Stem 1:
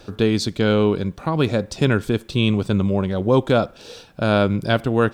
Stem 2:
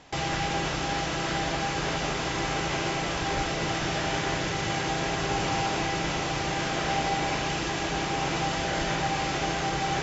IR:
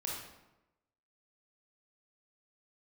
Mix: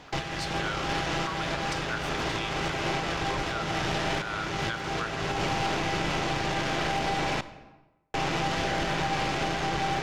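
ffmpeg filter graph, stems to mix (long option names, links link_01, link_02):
-filter_complex "[0:a]acompressor=threshold=-18dB:ratio=6,highpass=frequency=1300:width_type=q:width=2.2,volume=-13.5dB,asplit=3[link_01][link_02][link_03];[link_02]volume=-8.5dB[link_04];[1:a]lowpass=5100,aeval=exprs='0.178*(cos(1*acos(clip(val(0)/0.178,-1,1)))-cos(1*PI/2))+0.0141*(cos(8*acos(clip(val(0)/0.178,-1,1)))-cos(8*PI/2))':channel_layout=same,volume=2.5dB,asplit=3[link_05][link_06][link_07];[link_05]atrim=end=7.41,asetpts=PTS-STARTPTS,afade=type=out:start_time=7.406:duration=0.004:curve=hsin[link_08];[link_06]atrim=start=7.41:end=8.14,asetpts=PTS-STARTPTS,volume=0[link_09];[link_07]atrim=start=8.14,asetpts=PTS-STARTPTS,afade=type=in:duration=0.004:curve=hsin[link_10];[link_08][link_09][link_10]concat=n=3:v=0:a=1,asplit=2[link_11][link_12];[link_12]volume=-15.5dB[link_13];[link_03]apad=whole_len=442195[link_14];[link_11][link_14]sidechaincompress=threshold=-49dB:ratio=8:attack=6.5:release=439[link_15];[2:a]atrim=start_sample=2205[link_16];[link_04][link_13]amix=inputs=2:normalize=0[link_17];[link_17][link_16]afir=irnorm=-1:irlink=0[link_18];[link_01][link_15][link_18]amix=inputs=3:normalize=0,dynaudnorm=framelen=150:gausssize=7:maxgain=4.5dB,alimiter=limit=-19dB:level=0:latency=1:release=315"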